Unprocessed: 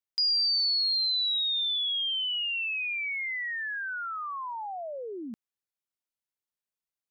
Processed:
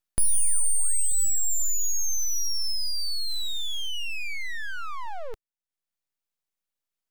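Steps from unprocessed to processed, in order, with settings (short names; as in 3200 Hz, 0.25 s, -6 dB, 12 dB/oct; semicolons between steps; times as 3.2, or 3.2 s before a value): 3.29–3.88 modulation noise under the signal 28 dB; reverb removal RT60 1.1 s; full-wave rectifier; gain +8 dB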